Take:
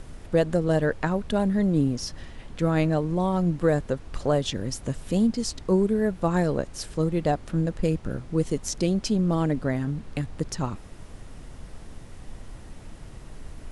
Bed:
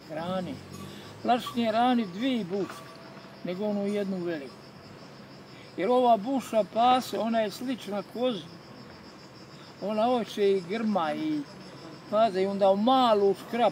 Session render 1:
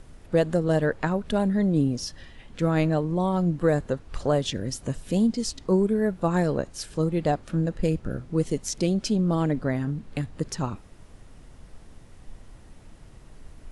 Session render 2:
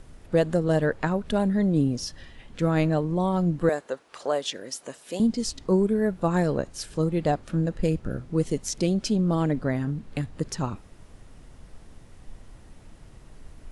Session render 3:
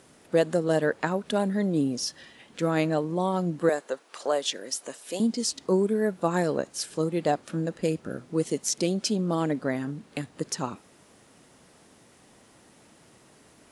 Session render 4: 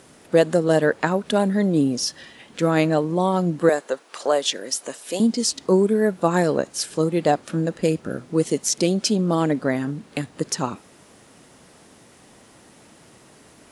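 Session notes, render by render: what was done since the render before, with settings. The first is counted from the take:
noise print and reduce 6 dB
3.69–5.2 HPF 470 Hz
HPF 220 Hz 12 dB/oct; high shelf 5100 Hz +6 dB
gain +6 dB; limiter -3 dBFS, peak gain reduction 1.5 dB

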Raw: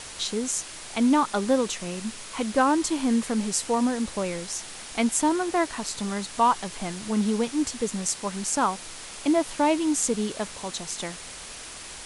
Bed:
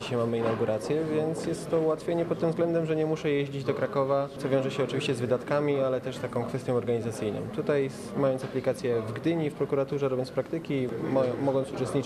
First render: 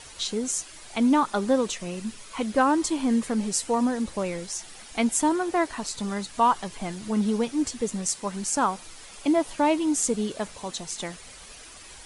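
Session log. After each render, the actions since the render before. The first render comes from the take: denoiser 9 dB, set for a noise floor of -41 dBFS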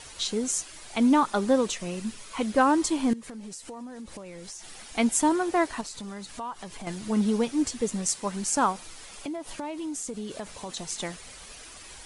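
3.13–4.8 compressor 12:1, threshold -37 dBFS; 5.81–6.87 compressor 3:1, threshold -37 dBFS; 8.72–10.77 compressor 8:1, threshold -31 dBFS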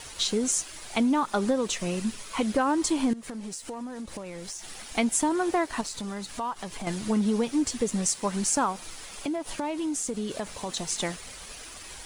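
compressor 6:1, threshold -25 dBFS, peak gain reduction 9 dB; sample leveller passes 1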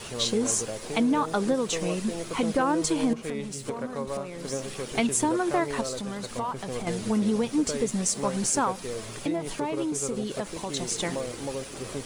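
add bed -7.5 dB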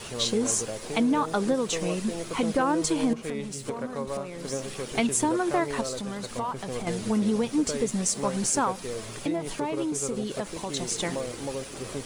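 nothing audible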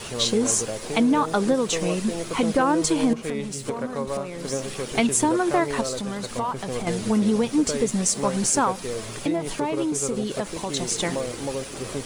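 gain +4 dB

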